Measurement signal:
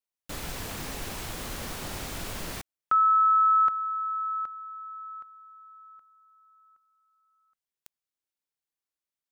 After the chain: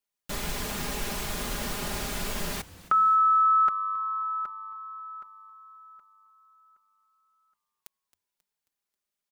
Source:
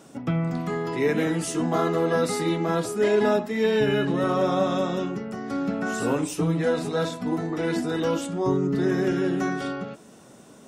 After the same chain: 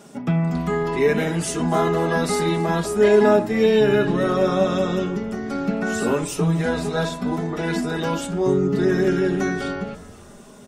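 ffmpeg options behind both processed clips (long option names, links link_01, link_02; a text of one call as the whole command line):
ffmpeg -i in.wav -filter_complex "[0:a]aecho=1:1:4.9:0.58,asplit=2[link_01][link_02];[link_02]asplit=4[link_03][link_04][link_05][link_06];[link_03]adelay=269,afreqshift=-100,volume=-19dB[link_07];[link_04]adelay=538,afreqshift=-200,volume=-25.4dB[link_08];[link_05]adelay=807,afreqshift=-300,volume=-31.8dB[link_09];[link_06]adelay=1076,afreqshift=-400,volume=-38.1dB[link_10];[link_07][link_08][link_09][link_10]amix=inputs=4:normalize=0[link_11];[link_01][link_11]amix=inputs=2:normalize=0,volume=2.5dB" out.wav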